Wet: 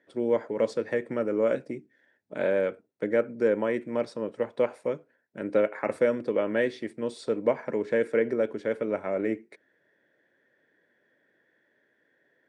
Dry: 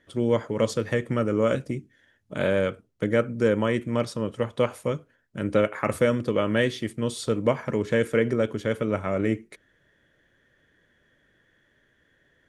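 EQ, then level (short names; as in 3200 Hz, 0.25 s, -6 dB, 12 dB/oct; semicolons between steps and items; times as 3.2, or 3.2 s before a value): speaker cabinet 310–8800 Hz, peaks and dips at 1200 Hz -9 dB, 3100 Hz -9 dB, 6600 Hz -7 dB; high shelf 3300 Hz -10 dB; 0.0 dB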